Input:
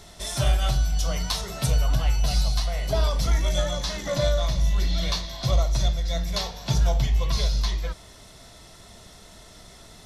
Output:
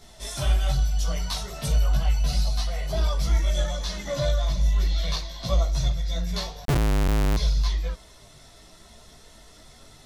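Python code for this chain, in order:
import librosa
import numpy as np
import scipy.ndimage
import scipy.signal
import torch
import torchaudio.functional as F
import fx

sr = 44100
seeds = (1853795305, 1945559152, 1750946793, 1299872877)

y = fx.chorus_voices(x, sr, voices=6, hz=0.31, base_ms=17, depth_ms=4.9, mix_pct=55)
y = fx.schmitt(y, sr, flips_db=-25.5, at=(6.65, 7.37))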